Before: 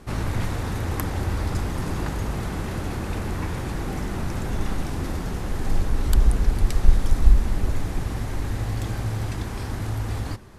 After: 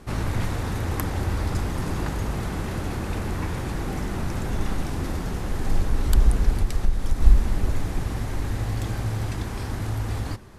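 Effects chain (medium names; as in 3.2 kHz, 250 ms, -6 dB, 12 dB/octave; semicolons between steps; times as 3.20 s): 6.51–7.21 s: compression 2.5:1, threshold -17 dBFS, peak gain reduction 8 dB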